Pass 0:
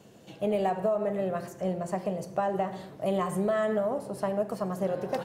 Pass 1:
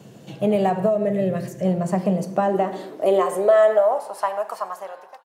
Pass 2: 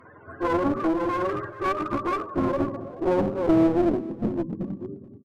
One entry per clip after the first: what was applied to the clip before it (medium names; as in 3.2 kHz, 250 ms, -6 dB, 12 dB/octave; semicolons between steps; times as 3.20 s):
fade out at the end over 0.78 s; time-frequency box 0.90–1.65 s, 680–1600 Hz -9 dB; high-pass sweep 130 Hz -> 940 Hz, 1.74–4.23 s; trim +6.5 dB
spectrum inverted on a logarithmic axis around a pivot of 460 Hz; one-sided clip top -27 dBFS; delay 432 ms -19.5 dB